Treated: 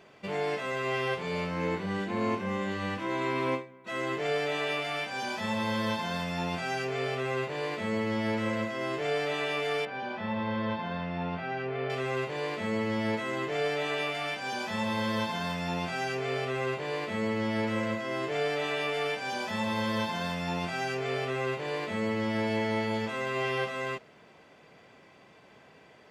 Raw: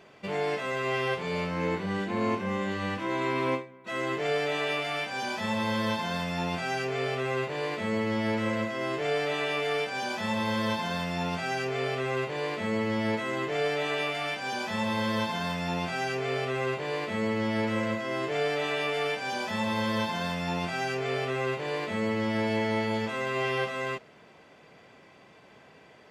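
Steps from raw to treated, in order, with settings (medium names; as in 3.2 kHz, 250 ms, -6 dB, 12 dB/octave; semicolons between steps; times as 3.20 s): 9.85–11.90 s: distance through air 360 m; trim -1.5 dB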